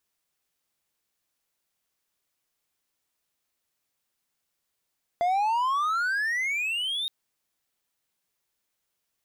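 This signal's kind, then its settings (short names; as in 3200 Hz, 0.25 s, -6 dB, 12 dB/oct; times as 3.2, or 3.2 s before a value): gliding synth tone triangle, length 1.87 s, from 683 Hz, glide +29.5 st, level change -6 dB, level -19 dB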